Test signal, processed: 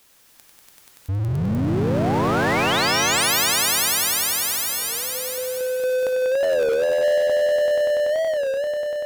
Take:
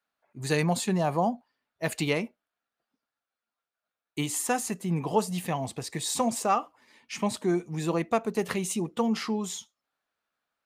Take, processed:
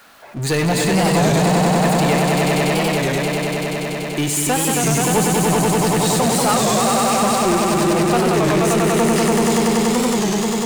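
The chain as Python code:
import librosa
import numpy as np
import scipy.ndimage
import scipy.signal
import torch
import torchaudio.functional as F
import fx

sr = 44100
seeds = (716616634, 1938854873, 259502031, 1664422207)

y = fx.echo_swell(x, sr, ms=96, loudest=5, wet_db=-3.5)
y = fx.power_curve(y, sr, exponent=0.5)
y = fx.record_warp(y, sr, rpm=33.33, depth_cents=160.0)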